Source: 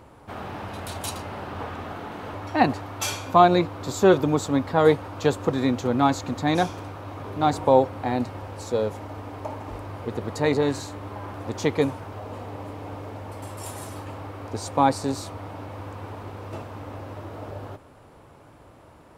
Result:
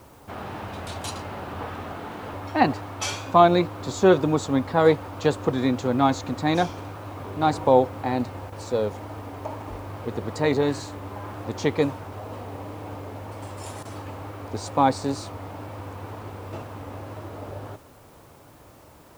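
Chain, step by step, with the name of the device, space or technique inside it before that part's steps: worn cassette (LPF 7900 Hz; wow and flutter; level dips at 8.5/13.83, 20 ms -8 dB; white noise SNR 34 dB)

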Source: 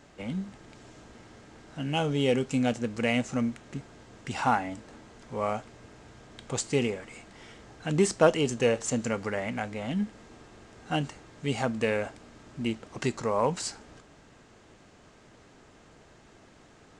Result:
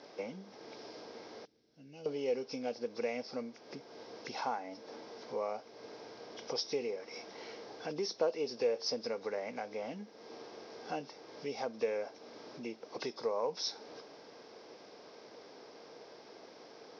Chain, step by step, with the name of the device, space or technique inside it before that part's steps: 1.45–2.06 passive tone stack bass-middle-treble 10-0-1; hearing aid with frequency lowering (nonlinear frequency compression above 2500 Hz 1.5:1; compressor 2.5:1, threshold -43 dBFS, peak gain reduction 18.5 dB; speaker cabinet 370–6900 Hz, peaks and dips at 470 Hz +7 dB, 1300 Hz -6 dB, 1800 Hz -7 dB, 2800 Hz -6 dB, 5600 Hz +8 dB); gain +4 dB

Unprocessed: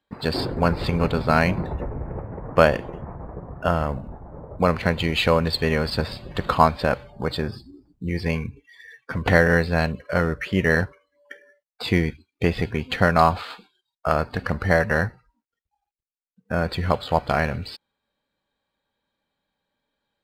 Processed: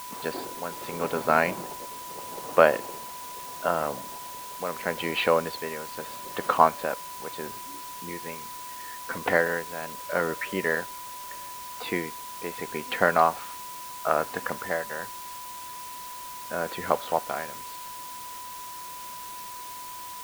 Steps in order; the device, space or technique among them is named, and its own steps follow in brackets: shortwave radio (BPF 330–2700 Hz; tremolo 0.77 Hz, depth 74%; whine 990 Hz -38 dBFS; white noise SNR 13 dB); gain -1 dB

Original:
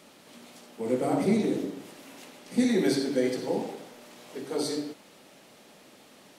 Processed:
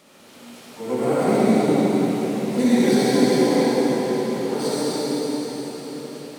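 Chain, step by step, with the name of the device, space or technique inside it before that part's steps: shimmer-style reverb (harmoniser +12 st -12 dB; reverb RT60 5.6 s, pre-delay 53 ms, DRR -8.5 dB)

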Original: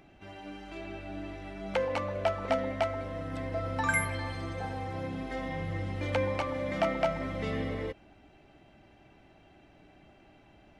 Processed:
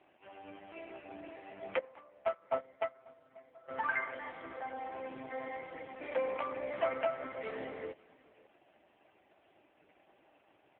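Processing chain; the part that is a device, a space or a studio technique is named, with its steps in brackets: 1.79–3.68 gate -27 dBFS, range -19 dB; satellite phone (BPF 390–3100 Hz; echo 0.542 s -22.5 dB; gain -1 dB; AMR-NB 4.75 kbps 8000 Hz)

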